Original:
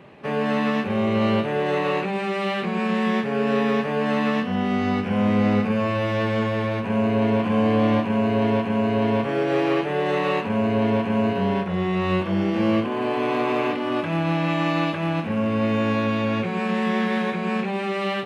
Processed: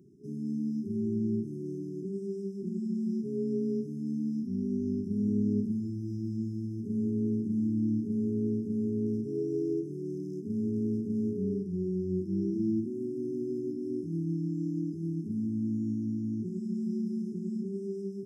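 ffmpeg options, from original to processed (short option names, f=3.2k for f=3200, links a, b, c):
-filter_complex "[0:a]asettb=1/sr,asplit=3[a][b][c];[a]atrim=end=9.064[d];[b]atrim=start=9.06:end=11.41,asetpts=PTS-STARTPTS,afade=t=in:d=0.004:c=qsin,afade=t=out:st=2.346:d=0.004:c=qsin,asoftclip=type=hard:threshold=-15.5dB[e];[c]atrim=start=11.406[f];[d][e]acrossfade=d=0.004:c1=hsin:c2=qsin[g];[g][f]acrossfade=d=0.004:c1=qsin:c2=hsin,acrossover=split=3700[h][i];[i]acompressor=threshold=-50dB:ratio=4:attack=1:release=60[j];[h][j]amix=inputs=2:normalize=0,afftfilt=real='re*(1-between(b*sr/4096,420,5000))':imag='im*(1-between(b*sr/4096,420,5000))':win_size=4096:overlap=0.75,highpass=90,volume=-7.5dB"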